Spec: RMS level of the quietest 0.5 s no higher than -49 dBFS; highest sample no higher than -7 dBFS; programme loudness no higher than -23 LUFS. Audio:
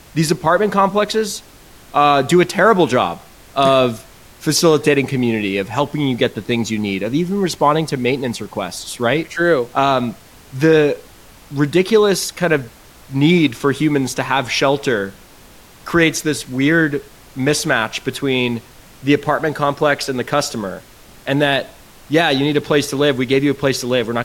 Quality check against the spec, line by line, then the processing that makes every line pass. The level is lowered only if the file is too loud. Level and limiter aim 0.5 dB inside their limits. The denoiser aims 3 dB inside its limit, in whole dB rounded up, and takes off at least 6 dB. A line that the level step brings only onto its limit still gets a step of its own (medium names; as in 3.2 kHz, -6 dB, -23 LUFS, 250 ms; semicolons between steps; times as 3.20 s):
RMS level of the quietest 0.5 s -43 dBFS: fail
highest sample -2.0 dBFS: fail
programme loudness -17.0 LUFS: fail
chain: trim -6.5 dB